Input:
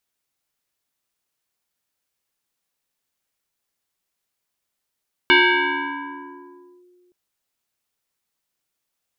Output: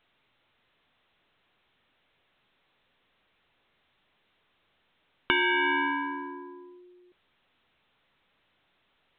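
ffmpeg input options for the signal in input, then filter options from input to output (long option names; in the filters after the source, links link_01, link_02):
-f lavfi -i "aevalsrc='0.355*pow(10,-3*t/2.24)*sin(2*PI*358*t+4.3*clip(1-t/1.54,0,1)*sin(2*PI*1.79*358*t))':duration=1.82:sample_rate=44100"
-af "acompressor=threshold=-23dB:ratio=10" -ar 8000 -c:a pcm_alaw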